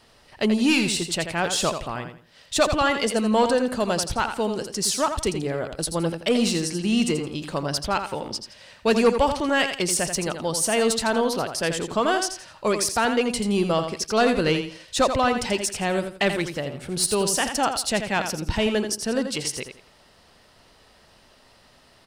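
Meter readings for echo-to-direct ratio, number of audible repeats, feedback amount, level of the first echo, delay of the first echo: -7.5 dB, 3, 27%, -8.0 dB, 84 ms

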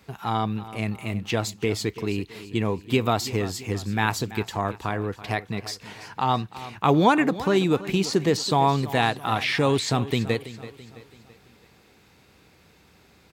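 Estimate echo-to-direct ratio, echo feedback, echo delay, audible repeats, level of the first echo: -14.5 dB, 46%, 0.332 s, 3, -15.5 dB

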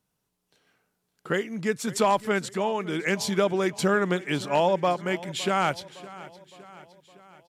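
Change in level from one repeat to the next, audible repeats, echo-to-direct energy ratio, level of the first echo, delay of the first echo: -5.0 dB, 4, -17.0 dB, -18.5 dB, 0.562 s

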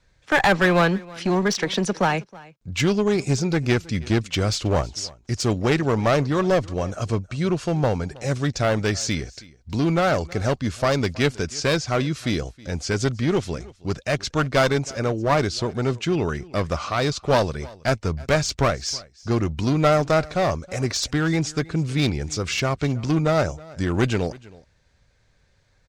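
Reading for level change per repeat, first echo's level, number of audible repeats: no steady repeat, -22.0 dB, 1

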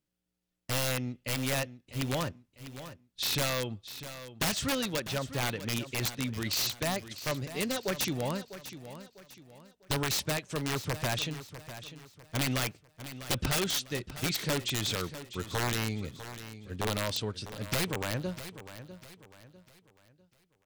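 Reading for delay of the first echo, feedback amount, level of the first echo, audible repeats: 0.649 s, 37%, -13.0 dB, 3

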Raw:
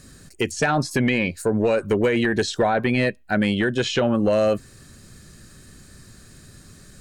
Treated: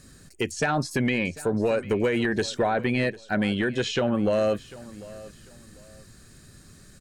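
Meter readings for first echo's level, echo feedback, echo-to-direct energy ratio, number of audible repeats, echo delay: -19.0 dB, 28%, -18.5 dB, 2, 0.746 s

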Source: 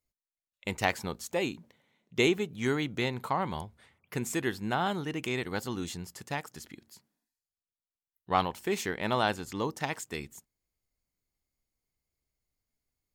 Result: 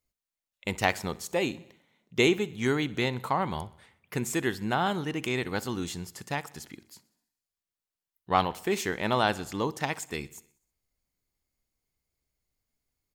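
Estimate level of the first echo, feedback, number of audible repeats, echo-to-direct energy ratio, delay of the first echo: -21.5 dB, 60%, 4, -19.5 dB, 63 ms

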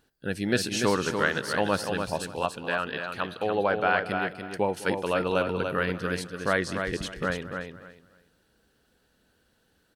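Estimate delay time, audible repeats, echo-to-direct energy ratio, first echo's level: 0.206 s, 5, -5.5 dB, -17.0 dB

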